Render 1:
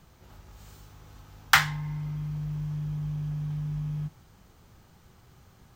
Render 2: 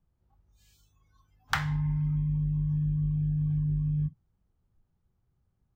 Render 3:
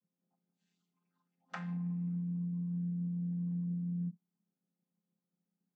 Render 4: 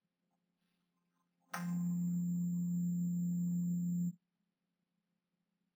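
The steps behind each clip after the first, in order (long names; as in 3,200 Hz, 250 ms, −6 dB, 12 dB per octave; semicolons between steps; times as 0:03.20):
noise reduction from a noise print of the clip's start 27 dB; spectral tilt −3 dB per octave; downward compressor 6 to 1, threshold −25 dBFS, peak gain reduction 10 dB
channel vocoder with a chord as carrier minor triad, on F3; level −6 dB
bad sample-rate conversion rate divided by 6×, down none, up hold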